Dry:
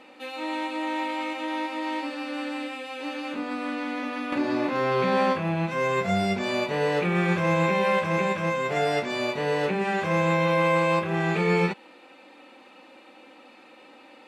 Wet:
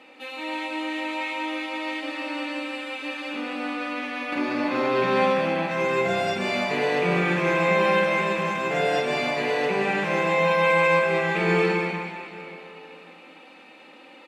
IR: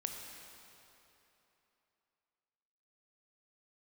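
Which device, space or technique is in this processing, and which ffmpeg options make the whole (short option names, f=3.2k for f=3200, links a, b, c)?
PA in a hall: -filter_complex "[0:a]highpass=140,equalizer=f=2.5k:t=o:w=1:g=4.5,aecho=1:1:193:0.501[a];[1:a]atrim=start_sample=2205[b];[a][b]afir=irnorm=-1:irlink=0"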